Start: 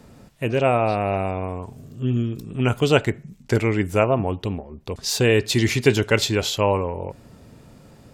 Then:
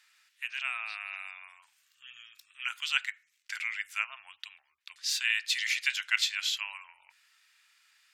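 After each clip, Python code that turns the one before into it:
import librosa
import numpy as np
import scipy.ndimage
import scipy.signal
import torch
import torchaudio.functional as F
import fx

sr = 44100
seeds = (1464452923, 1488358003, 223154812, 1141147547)

y = scipy.signal.sosfilt(scipy.signal.cheby2(4, 60, 520.0, 'highpass', fs=sr, output='sos'), x)
y = fx.high_shelf(y, sr, hz=4900.0, db=-11.0)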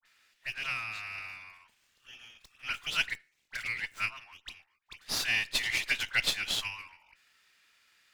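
y = fx.dispersion(x, sr, late='highs', ms=59.0, hz=1600.0)
y = fx.running_max(y, sr, window=3)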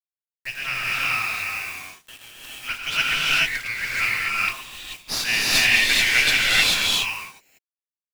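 y = fx.quant_dither(x, sr, seeds[0], bits=8, dither='none')
y = fx.rev_gated(y, sr, seeds[1], gate_ms=460, shape='rising', drr_db=-6.5)
y = y * librosa.db_to_amplitude(5.5)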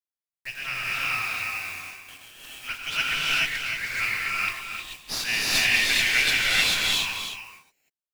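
y = x + 10.0 ** (-8.5 / 20.0) * np.pad(x, (int(311 * sr / 1000.0), 0))[:len(x)]
y = y * librosa.db_to_amplitude(-4.0)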